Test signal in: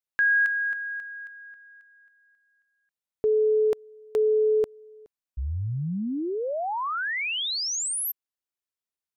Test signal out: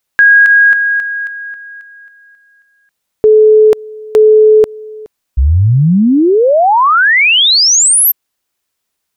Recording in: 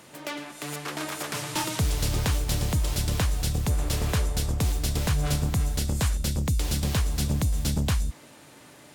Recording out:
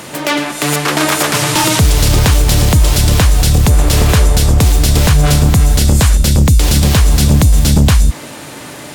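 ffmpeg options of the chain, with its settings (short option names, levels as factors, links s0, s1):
-af "alimiter=level_in=11.9:limit=0.891:release=50:level=0:latency=1,volume=0.891"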